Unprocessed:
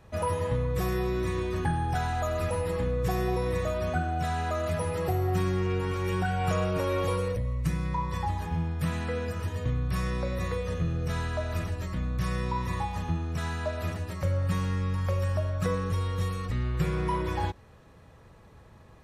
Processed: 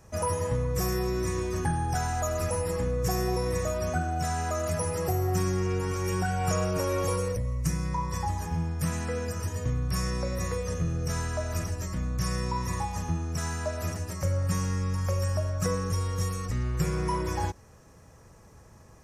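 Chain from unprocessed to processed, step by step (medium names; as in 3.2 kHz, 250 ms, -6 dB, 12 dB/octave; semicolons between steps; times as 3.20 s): resonant high shelf 4.7 kHz +7 dB, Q 3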